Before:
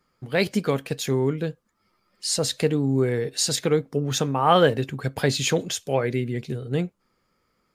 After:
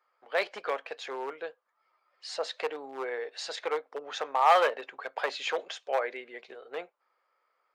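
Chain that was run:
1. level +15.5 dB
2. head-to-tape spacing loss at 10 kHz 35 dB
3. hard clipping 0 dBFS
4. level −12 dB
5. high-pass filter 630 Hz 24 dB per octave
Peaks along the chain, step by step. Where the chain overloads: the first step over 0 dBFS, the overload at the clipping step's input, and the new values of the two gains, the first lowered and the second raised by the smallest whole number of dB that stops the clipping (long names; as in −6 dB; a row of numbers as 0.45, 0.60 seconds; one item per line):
+11.5, +8.5, 0.0, −12.0, −10.5 dBFS
step 1, 8.5 dB
step 1 +6.5 dB, step 4 −3 dB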